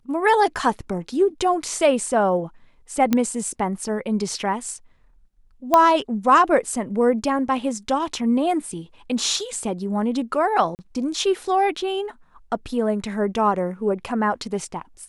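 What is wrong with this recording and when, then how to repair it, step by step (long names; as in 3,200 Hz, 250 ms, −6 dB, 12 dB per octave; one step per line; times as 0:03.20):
0:03.13: click −6 dBFS
0:05.74: click −4 dBFS
0:10.75–0:10.79: drop-out 39 ms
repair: click removal
repair the gap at 0:10.75, 39 ms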